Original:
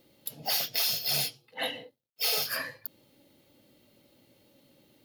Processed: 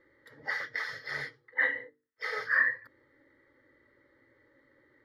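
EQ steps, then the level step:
low-pass with resonance 1,900 Hz, resonance Q 14
mains-hum notches 50/100/150/200/250/300/350/400/450 Hz
phaser with its sweep stopped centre 710 Hz, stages 6
0.0 dB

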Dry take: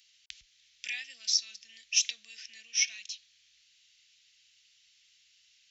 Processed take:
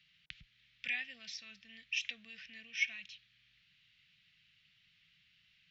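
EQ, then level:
dynamic equaliser 4,300 Hz, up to −6 dB, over −43 dBFS, Q 2.2
high-frequency loss of the air 480 metres
parametric band 160 Hz +15 dB 1 octave
+6.5 dB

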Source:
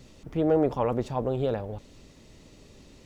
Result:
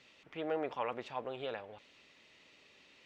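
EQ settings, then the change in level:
resonant band-pass 2,600 Hz, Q 1.6
high-shelf EQ 2,800 Hz −8.5 dB
+6.0 dB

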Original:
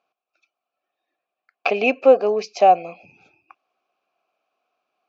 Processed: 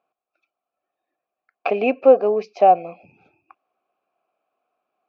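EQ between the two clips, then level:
high-frequency loss of the air 110 metres
high-shelf EQ 2,400 Hz −11.5 dB
+1.5 dB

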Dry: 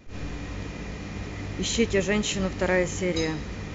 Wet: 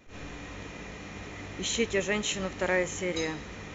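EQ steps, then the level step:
low-shelf EQ 290 Hz −9.5 dB
parametric band 4,800 Hz −8.5 dB 0.22 octaves
−1.5 dB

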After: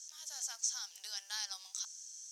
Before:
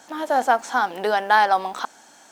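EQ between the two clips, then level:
resonant band-pass 5,900 Hz, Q 5.7
first difference
+10.5 dB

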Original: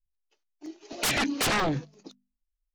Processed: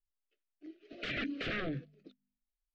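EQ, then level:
Butterworth band-reject 920 Hz, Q 1.2
low-pass filter 3,300 Hz 24 dB per octave
mains-hum notches 50/100/150/200/250 Hz
−8.5 dB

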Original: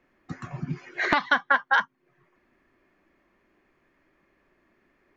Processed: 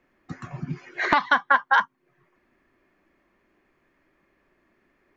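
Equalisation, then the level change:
dynamic equaliser 1,000 Hz, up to +6 dB, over −37 dBFS, Q 2.3
0.0 dB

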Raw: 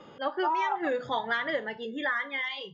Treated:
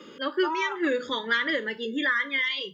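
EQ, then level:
high-pass filter 98 Hz
high-shelf EQ 5,900 Hz +6.5 dB
phaser with its sweep stopped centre 310 Hz, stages 4
+7.0 dB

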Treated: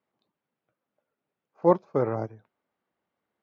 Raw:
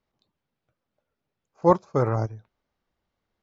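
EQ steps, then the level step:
dynamic equaliser 1,200 Hz, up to −6 dB, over −35 dBFS, Q 1.2
band-pass filter 190–2,700 Hz
0.0 dB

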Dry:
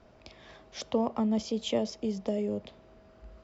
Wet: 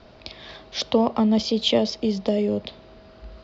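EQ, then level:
low-pass with resonance 4,300 Hz, resonance Q 2.8
+8.5 dB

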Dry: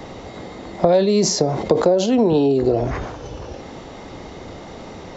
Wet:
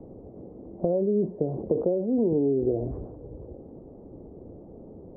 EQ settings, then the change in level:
transistor ladder low-pass 590 Hz, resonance 25%
high-frequency loss of the air 260 metres
−2.5 dB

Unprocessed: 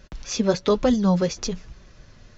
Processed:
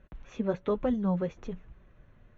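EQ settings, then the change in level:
moving average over 9 samples
high-frequency loss of the air 110 metres
−8.5 dB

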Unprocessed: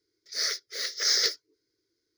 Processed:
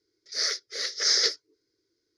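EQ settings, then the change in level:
low-pass filter 6,400 Hz 12 dB per octave
bass and treble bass −2 dB, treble +9 dB
high-shelf EQ 2,400 Hz −8.5 dB
+3.5 dB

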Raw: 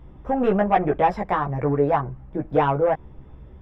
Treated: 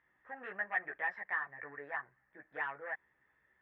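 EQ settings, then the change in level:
resonant band-pass 1,800 Hz, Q 12
+3.5 dB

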